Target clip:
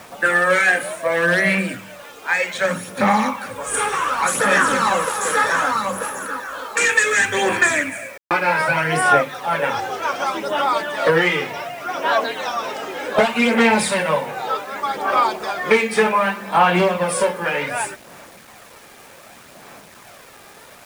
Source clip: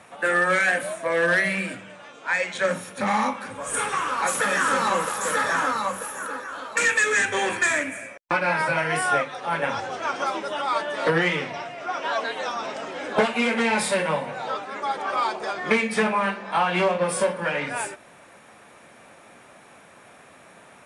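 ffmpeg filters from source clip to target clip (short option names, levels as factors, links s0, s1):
-af "aphaser=in_gain=1:out_gain=1:delay=2.5:decay=0.41:speed=0.66:type=sinusoidal,acrusher=bits=7:mix=0:aa=0.000001,volume=1.58"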